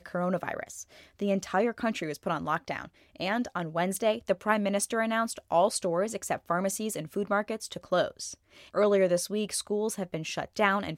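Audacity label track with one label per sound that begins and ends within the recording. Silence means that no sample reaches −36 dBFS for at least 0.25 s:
1.190000	2.850000	sound
3.200000	8.330000	sound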